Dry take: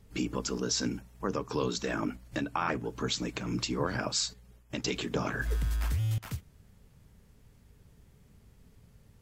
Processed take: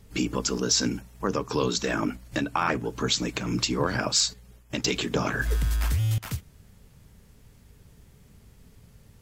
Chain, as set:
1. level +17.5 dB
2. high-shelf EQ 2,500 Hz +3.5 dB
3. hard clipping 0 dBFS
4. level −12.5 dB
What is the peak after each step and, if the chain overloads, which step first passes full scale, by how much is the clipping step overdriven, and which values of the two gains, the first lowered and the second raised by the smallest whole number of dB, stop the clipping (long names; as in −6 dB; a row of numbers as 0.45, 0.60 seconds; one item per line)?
+0.5, +3.0, 0.0, −12.5 dBFS
step 1, 3.0 dB
step 1 +14.5 dB, step 4 −9.5 dB